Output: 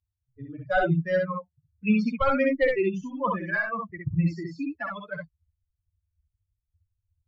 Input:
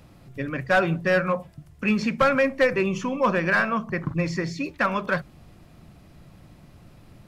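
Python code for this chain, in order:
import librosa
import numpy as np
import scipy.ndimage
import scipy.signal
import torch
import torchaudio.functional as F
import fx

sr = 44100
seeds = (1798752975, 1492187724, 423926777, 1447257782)

y = fx.bin_expand(x, sr, power=3.0)
y = scipy.signal.sosfilt(scipy.signal.butter(2, 3900.0, 'lowpass', fs=sr, output='sos'), y)
y = fx.low_shelf(y, sr, hz=270.0, db=10.0)
y = fx.room_early_taps(y, sr, ms=(54, 65), db=(-11.0, -3.0))
y = y * 10.0 ** (-2.0 / 20.0)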